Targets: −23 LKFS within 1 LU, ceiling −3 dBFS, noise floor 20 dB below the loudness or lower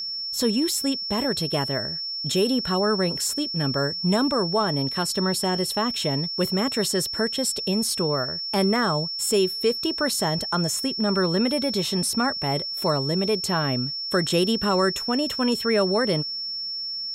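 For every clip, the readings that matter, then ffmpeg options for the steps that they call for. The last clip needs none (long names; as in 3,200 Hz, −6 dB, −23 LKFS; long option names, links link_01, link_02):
interfering tone 5,400 Hz; level of the tone −28 dBFS; integrated loudness −23.5 LKFS; sample peak −10.5 dBFS; target loudness −23.0 LKFS
→ -af "bandreject=frequency=5400:width=30"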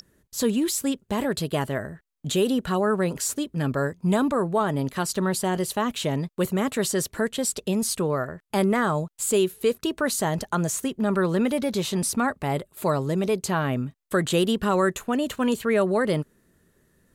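interfering tone none found; integrated loudness −25.0 LKFS; sample peak −11.5 dBFS; target loudness −23.0 LKFS
→ -af "volume=2dB"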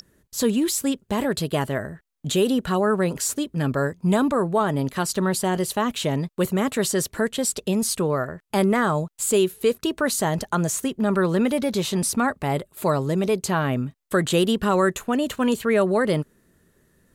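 integrated loudness −23.0 LKFS; sample peak −9.5 dBFS; background noise floor −66 dBFS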